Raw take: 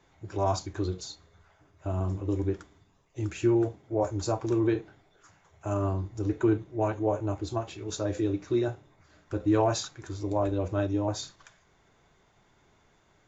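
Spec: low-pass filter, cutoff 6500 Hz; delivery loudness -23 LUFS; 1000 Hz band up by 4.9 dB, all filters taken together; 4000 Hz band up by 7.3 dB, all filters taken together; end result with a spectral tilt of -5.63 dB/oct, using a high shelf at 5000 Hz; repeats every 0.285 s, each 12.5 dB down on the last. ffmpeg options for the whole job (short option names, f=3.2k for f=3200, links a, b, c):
-af "lowpass=6.5k,equalizer=f=1k:t=o:g=6,equalizer=f=4k:t=o:g=5.5,highshelf=f=5k:g=7.5,aecho=1:1:285|570|855:0.237|0.0569|0.0137,volume=5.5dB"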